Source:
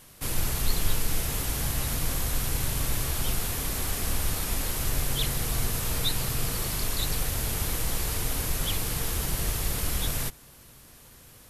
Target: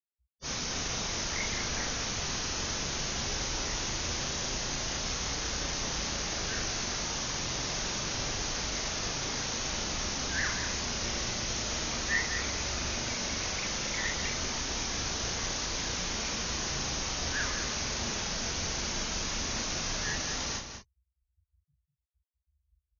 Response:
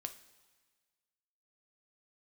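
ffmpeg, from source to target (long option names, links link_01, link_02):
-filter_complex "[0:a]highpass=frequency=210:poles=1,afftfilt=real='re*gte(hypot(re,im),0.00891)':imag='im*gte(hypot(re,im),0.00891)':win_size=1024:overlap=0.75,flanger=delay=16.5:depth=5.2:speed=0.38,asplit=2[link_01][link_02];[link_02]adelay=99.13,volume=-7dB,highshelf=frequency=4000:gain=-2.23[link_03];[link_01][link_03]amix=inputs=2:normalize=0,asetrate=22050,aresample=44100,volume=1.5dB"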